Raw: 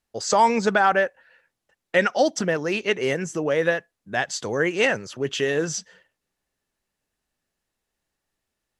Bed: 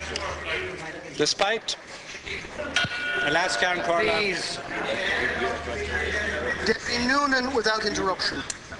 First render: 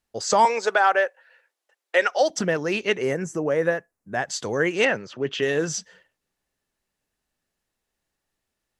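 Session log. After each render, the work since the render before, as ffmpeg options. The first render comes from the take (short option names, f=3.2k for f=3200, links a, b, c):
-filter_complex "[0:a]asettb=1/sr,asplit=3[a][b][c];[a]atrim=end=0.454[d];[b]atrim=start=0.45:end=2.3,asetpts=PTS-STARTPTS,afade=t=in:d=0.004:c=qsin,afade=t=out:st=1.846:d=0.004:c=qsin,highpass=f=390:w=0.5412,highpass=f=390:w=1.3066[e];[c]atrim=start=2.296[f];[d][e]acrossfade=d=0.004:c1=hsin:c2=qsin[g];[g][f]acrossfade=d=0.004:c1=qsin:c2=hsin,asettb=1/sr,asplit=3[h][i][j];[h]atrim=end=3.024[k];[i]atrim=start=3.02:end=4.3,asetpts=PTS-STARTPTS,afade=t=in:d=0.004:c=qsin,afade=t=out:st=1.276:d=0.004:c=qsin,equalizer=f=3.4k:t=o:w=1.1:g=-12.5[l];[j]atrim=start=4.296[m];[k][l]acrossfade=d=0.004:c1=hsin:c2=qsin[n];[n][m]acrossfade=d=0.004:c1=qsin:c2=hsin,asplit=3[o][p][q];[o]afade=t=out:st=4.84:d=0.02[r];[p]highpass=120,lowpass=4k,afade=t=in:st=4.84:d=0.02,afade=t=out:st=5.41:d=0.02[s];[q]afade=t=in:st=5.41:d=0.02[t];[r][s][t]amix=inputs=3:normalize=0"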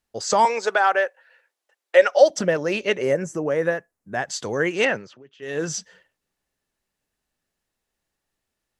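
-filter_complex "[0:a]asettb=1/sr,asplit=3[a][b][c];[a]atrim=end=1.954[d];[b]atrim=start=1.95:end=3.34,asetpts=PTS-STARTPTS,afade=t=in:d=0.004:c=qsin,afade=t=out:st=1.386:d=0.004:c=qsin,equalizer=f=570:w=7.3:g=12[e];[c]atrim=start=3.336[f];[d][e]acrossfade=d=0.004:c1=hsin:c2=qsin[g];[g][f]acrossfade=d=0.004:c1=qsin:c2=hsin,asplit=3[h][i][j];[h]atrim=end=5.23,asetpts=PTS-STARTPTS,afade=t=out:st=4.96:d=0.27:silence=0.0668344[k];[i]atrim=start=5.23:end=5.39,asetpts=PTS-STARTPTS,volume=-23.5dB[l];[j]atrim=start=5.39,asetpts=PTS-STARTPTS,afade=t=in:d=0.27:silence=0.0668344[m];[k][l][m]concat=n=3:v=0:a=1"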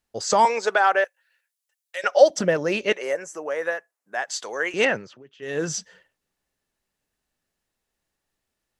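-filter_complex "[0:a]asettb=1/sr,asplit=3[a][b][c];[a]atrim=end=1.044[d];[b]atrim=start=1.04:end=2.04,asetpts=PTS-STARTPTS,afade=t=in:d=0.004:c=qsin,afade=t=out:st=0.996:d=0.004:c=qsin,aderivative[e];[c]atrim=start=2.036[f];[d][e]acrossfade=d=0.004:c1=hsin:c2=qsin[g];[g][f]acrossfade=d=0.004:c1=qsin:c2=hsin,asettb=1/sr,asplit=3[h][i][j];[h]atrim=end=2.924[k];[i]atrim=start=2.92:end=4.74,asetpts=PTS-STARTPTS,afade=t=in:d=0.004:c=qsin,afade=t=out:st=1.816:d=0.004:c=qsin,highpass=630[l];[j]atrim=start=4.736[m];[k][l]acrossfade=d=0.004:c1=hsin:c2=qsin[n];[n][m]acrossfade=d=0.004:c1=qsin:c2=hsin"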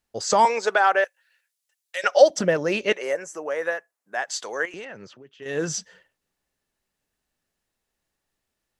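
-filter_complex "[0:a]asettb=1/sr,asplit=3[a][b][c];[a]atrim=end=1.034[d];[b]atrim=start=1.03:end=2.22,asetpts=PTS-STARTPTS,afade=t=in:d=0.004:c=qsin,afade=t=out:st=1.186:d=0.004:c=qsin,equalizer=f=5.4k:t=o:w=2.8:g=4[e];[c]atrim=start=2.216[f];[d][e]acrossfade=d=0.004:c1=hsin:c2=qsin[g];[g][f]acrossfade=d=0.004:c1=qsin:c2=hsin,asettb=1/sr,asplit=3[h][i][j];[h]atrim=end=4.654[k];[i]atrim=start=4.65:end=5.46,asetpts=PTS-STARTPTS,afade=t=in:d=0.004:c=qsin,afade=t=out:st=0.806:d=0.004:c=qsin,acompressor=threshold=-34dB:ratio=10:attack=3.2:release=140:knee=1:detection=peak[l];[j]atrim=start=5.456[m];[k][l]acrossfade=d=0.004:c1=hsin:c2=qsin[n];[n][m]acrossfade=d=0.004:c1=qsin:c2=hsin"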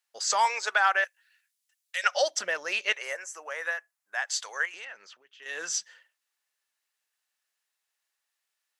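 -af "highpass=1.2k"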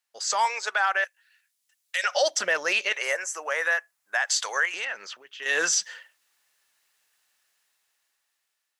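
-af "dynaudnorm=f=480:g=7:m=14dB,alimiter=limit=-14dB:level=0:latency=1:release=37"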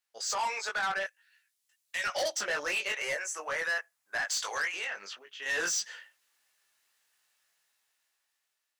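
-af "flanger=delay=17.5:depth=3.4:speed=0.52,asoftclip=type=tanh:threshold=-26.5dB"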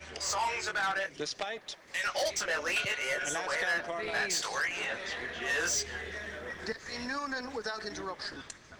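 -filter_complex "[1:a]volume=-13.5dB[a];[0:a][a]amix=inputs=2:normalize=0"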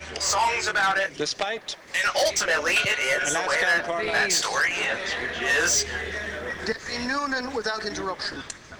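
-af "volume=9dB"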